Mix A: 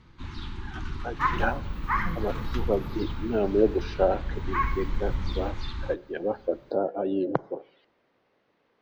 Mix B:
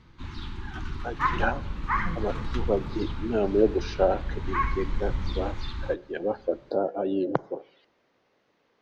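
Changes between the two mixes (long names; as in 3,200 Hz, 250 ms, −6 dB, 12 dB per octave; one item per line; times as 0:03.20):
speech: remove high-frequency loss of the air 120 metres
second sound: add low-pass filter 5,000 Hz 12 dB per octave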